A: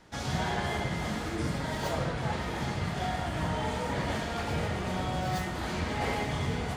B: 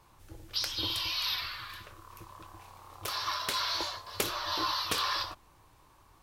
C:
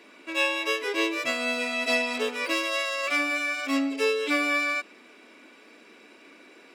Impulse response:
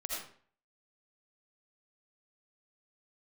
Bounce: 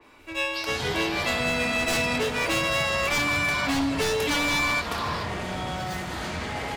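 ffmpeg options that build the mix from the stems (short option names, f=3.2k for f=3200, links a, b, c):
-filter_complex "[0:a]tiltshelf=f=970:g=-3,alimiter=level_in=1dB:limit=-24dB:level=0:latency=1,volume=-1dB,adelay=550,volume=0dB,asplit=2[a][b];[b]volume=-6dB[c];[1:a]equalizer=f=880:w=1.5:g=8.5,volume=-3dB[d];[2:a]dynaudnorm=f=350:g=7:m=11dB,aeval=exprs='0.211*(abs(mod(val(0)/0.211+3,4)-2)-1)':c=same,volume=-3dB[e];[3:a]atrim=start_sample=2205[f];[c][f]afir=irnorm=-1:irlink=0[g];[a][d][e][g]amix=inputs=4:normalize=0,acrossover=split=150|3000[h][i][j];[i]acompressor=threshold=-23dB:ratio=6[k];[h][k][j]amix=inputs=3:normalize=0,adynamicequalizer=threshold=0.0158:dfrequency=3000:dqfactor=0.7:tfrequency=3000:tqfactor=0.7:attack=5:release=100:ratio=0.375:range=2:mode=cutabove:tftype=highshelf"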